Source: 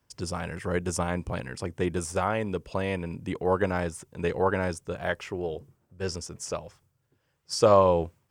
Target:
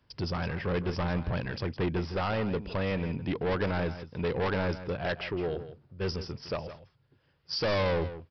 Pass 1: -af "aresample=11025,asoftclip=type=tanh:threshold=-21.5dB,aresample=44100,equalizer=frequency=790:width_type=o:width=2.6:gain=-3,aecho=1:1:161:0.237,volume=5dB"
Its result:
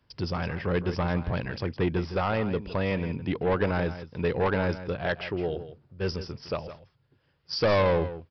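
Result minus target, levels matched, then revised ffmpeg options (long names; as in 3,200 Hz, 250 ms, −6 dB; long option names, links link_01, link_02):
soft clipping: distortion −4 dB
-af "aresample=11025,asoftclip=type=tanh:threshold=-28.5dB,aresample=44100,equalizer=frequency=790:width_type=o:width=2.6:gain=-3,aecho=1:1:161:0.237,volume=5dB"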